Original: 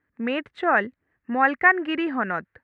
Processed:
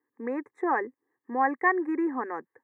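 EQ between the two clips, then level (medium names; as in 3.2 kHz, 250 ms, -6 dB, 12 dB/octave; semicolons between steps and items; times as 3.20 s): high-pass 180 Hz 24 dB/octave; Butterworth band-stop 3 kHz, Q 0.74; static phaser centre 950 Hz, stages 8; 0.0 dB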